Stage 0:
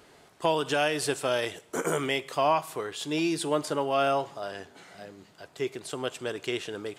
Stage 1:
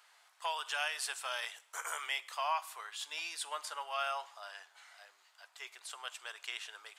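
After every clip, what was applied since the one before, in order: HPF 900 Hz 24 dB/oct; gain -5.5 dB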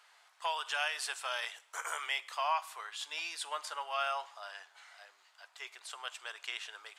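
high shelf 10000 Hz -9 dB; gain +2 dB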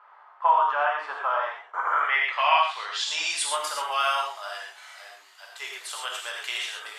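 non-linear reverb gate 0.15 s flat, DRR -2 dB; low-pass sweep 1100 Hz -> 13000 Hz, 1.84–3.67; gain +6.5 dB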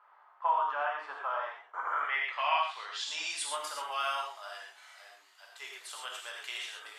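bell 280 Hz +5 dB 0.49 oct; gain -8.5 dB

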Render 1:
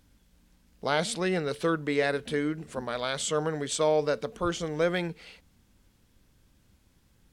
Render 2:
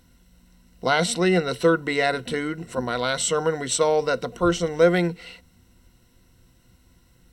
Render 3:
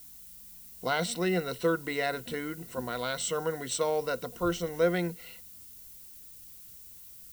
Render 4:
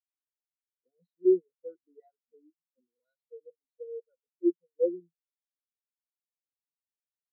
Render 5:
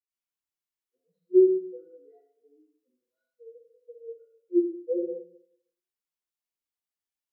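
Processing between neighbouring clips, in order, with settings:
ripple EQ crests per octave 2, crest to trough 11 dB; gain +5 dB
added noise violet -41 dBFS; gain -8.5 dB
LFO low-pass square 2 Hz 390–4700 Hz; spectral expander 4:1
reverb RT60 0.75 s, pre-delay 76 ms; gain +4.5 dB

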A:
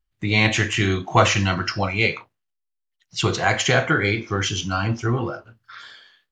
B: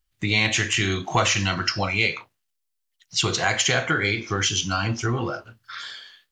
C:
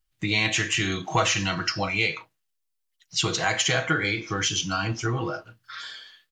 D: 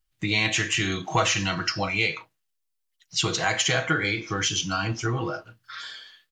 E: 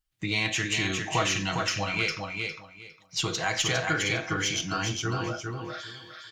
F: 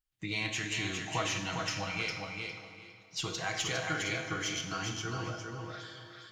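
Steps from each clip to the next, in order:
high shelf 2400 Hz +9.5 dB; compressor 2:1, threshold -24 dBFS, peak gain reduction 9 dB; gain +1 dB
comb 6.3 ms, depth 46%; gain -3 dB
nothing audible
one diode to ground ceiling -9.5 dBFS; on a send: feedback echo 0.406 s, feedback 20%, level -4.5 dB; on the sum: gain -3.5 dB
plate-style reverb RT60 2.5 s, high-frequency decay 0.8×, DRR 6.5 dB; gain -7.5 dB

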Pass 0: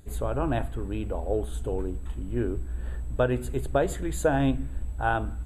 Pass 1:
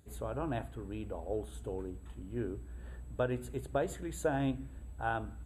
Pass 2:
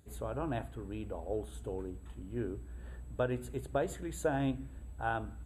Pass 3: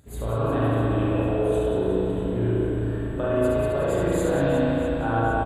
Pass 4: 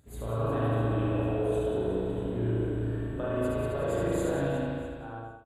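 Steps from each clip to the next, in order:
HPF 67 Hz; gain -8.5 dB
nothing audible
compressor, threshold -35 dBFS, peak gain reduction 8.5 dB; reverse bouncing-ball echo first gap 70 ms, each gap 1.6×, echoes 5; reverb RT60 3.7 s, pre-delay 35 ms, DRR -8.5 dB; gain +6.5 dB
ending faded out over 1.16 s; echo 79 ms -9 dB; gain -6.5 dB

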